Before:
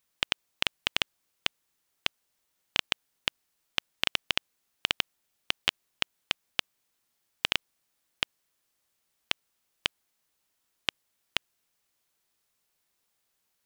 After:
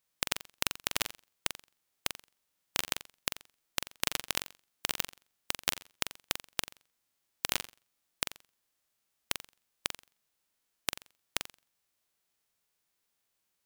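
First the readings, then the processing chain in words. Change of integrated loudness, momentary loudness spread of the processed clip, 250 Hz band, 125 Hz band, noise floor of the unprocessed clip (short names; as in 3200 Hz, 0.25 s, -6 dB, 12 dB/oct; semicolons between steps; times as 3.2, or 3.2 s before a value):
-4.0 dB, 13 LU, -0.5 dB, -0.5 dB, -78 dBFS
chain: spectral whitening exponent 0.3; flutter echo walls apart 7.5 m, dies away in 0.32 s; gain -4 dB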